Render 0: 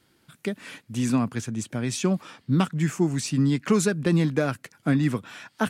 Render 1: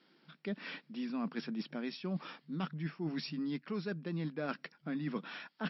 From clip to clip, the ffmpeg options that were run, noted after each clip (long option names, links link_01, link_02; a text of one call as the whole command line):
ffmpeg -i in.wav -af "afftfilt=real='re*between(b*sr/4096,150,5600)':imag='im*between(b*sr/4096,150,5600)':win_size=4096:overlap=0.75,areverse,acompressor=threshold=-31dB:ratio=20,areverse,volume=-3dB" out.wav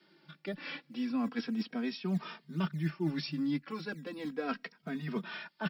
ffmpeg -i in.wav -filter_complex "[0:a]acrossover=split=140|340|2100[link_01][link_02][link_03][link_04];[link_01]acrusher=samples=17:mix=1:aa=0.000001:lfo=1:lforange=17:lforate=3.3[link_05];[link_05][link_02][link_03][link_04]amix=inputs=4:normalize=0,asplit=2[link_06][link_07];[link_07]adelay=2.9,afreqshift=-0.36[link_08];[link_06][link_08]amix=inputs=2:normalize=1,volume=6dB" out.wav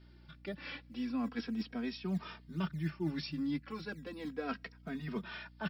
ffmpeg -i in.wav -af "aeval=exprs='val(0)+0.002*(sin(2*PI*60*n/s)+sin(2*PI*2*60*n/s)/2+sin(2*PI*3*60*n/s)/3+sin(2*PI*4*60*n/s)/4+sin(2*PI*5*60*n/s)/5)':channel_layout=same,volume=-3dB" out.wav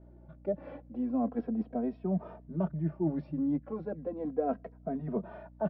ffmpeg -i in.wav -af "lowpass=frequency=640:width_type=q:width=4,volume=3.5dB" out.wav